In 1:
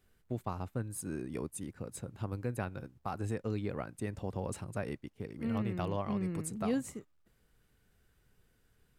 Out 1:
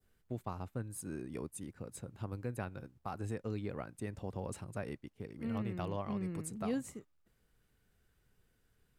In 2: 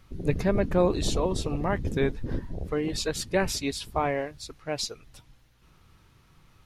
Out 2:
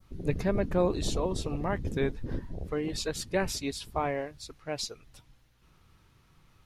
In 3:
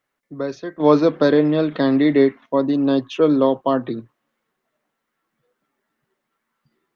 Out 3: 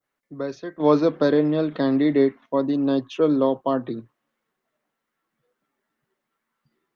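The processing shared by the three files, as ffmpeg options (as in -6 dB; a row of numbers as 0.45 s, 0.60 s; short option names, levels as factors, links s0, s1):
-af "adynamicequalizer=threshold=0.0141:dfrequency=2400:dqfactor=0.85:tfrequency=2400:tqfactor=0.85:attack=5:release=100:ratio=0.375:range=2:mode=cutabove:tftype=bell,volume=0.668"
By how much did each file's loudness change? -3.5 LU, -3.5 LU, -3.5 LU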